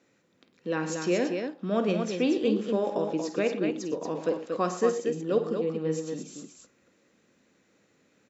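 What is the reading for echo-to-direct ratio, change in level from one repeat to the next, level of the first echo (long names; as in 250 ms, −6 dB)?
−4.0 dB, repeats not evenly spaced, −10.5 dB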